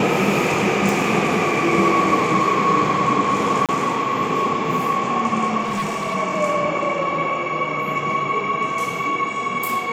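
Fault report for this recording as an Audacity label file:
0.890000	0.890000	pop
3.660000	3.690000	dropout 27 ms
5.610000	6.160000	clipped -19.5 dBFS

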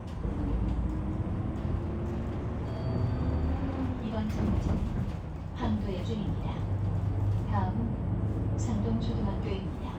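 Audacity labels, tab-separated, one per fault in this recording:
1.780000	2.850000	clipped -29.5 dBFS

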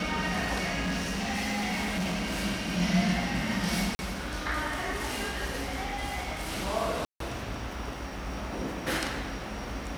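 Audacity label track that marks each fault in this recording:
0.800000	2.450000	clipped -27 dBFS
3.950000	3.990000	dropout 40 ms
7.050000	7.200000	dropout 153 ms

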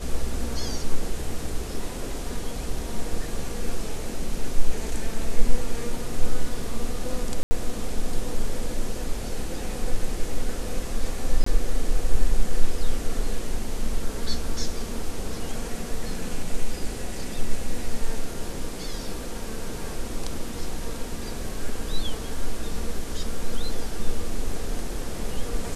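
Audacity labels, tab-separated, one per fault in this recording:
7.430000	7.510000	dropout 80 ms
11.440000	11.460000	dropout 24 ms

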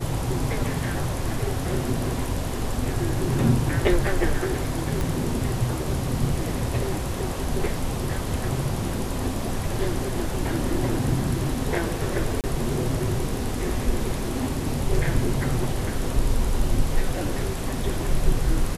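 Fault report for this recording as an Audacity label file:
5.010000	5.010000	pop
12.410000	12.440000	dropout 28 ms

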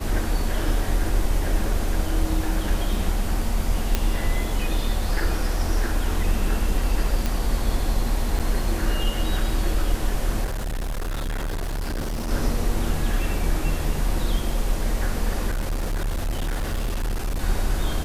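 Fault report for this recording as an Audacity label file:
3.950000	3.950000	pop -6 dBFS
7.260000	7.260000	pop
8.390000	8.400000	dropout 6.2 ms
10.440000	12.310000	clipped -24 dBFS
15.500000	17.410000	clipped -21.5 dBFS

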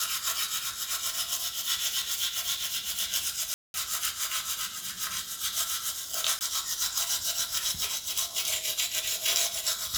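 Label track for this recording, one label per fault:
3.540000	3.740000	dropout 201 ms
6.390000	6.410000	dropout 19 ms

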